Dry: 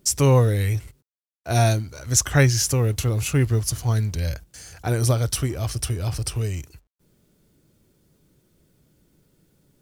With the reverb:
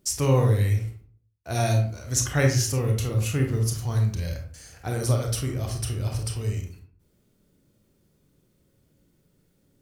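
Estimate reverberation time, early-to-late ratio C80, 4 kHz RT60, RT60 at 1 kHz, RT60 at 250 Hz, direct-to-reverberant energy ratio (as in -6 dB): 0.50 s, 11.0 dB, 0.30 s, 0.50 s, 0.65 s, 2.0 dB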